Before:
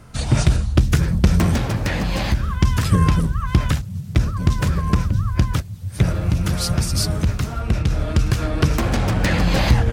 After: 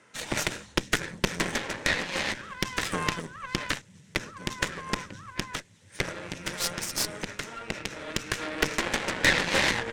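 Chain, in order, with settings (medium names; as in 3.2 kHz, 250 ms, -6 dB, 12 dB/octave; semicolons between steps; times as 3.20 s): cabinet simulation 440–8400 Hz, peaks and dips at 710 Hz -10 dB, 1.2 kHz -7 dB, 1.9 kHz +6 dB, 4.6 kHz -7 dB; Chebyshev shaper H 5 -19 dB, 6 -14 dB, 7 -17 dB, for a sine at -7.5 dBFS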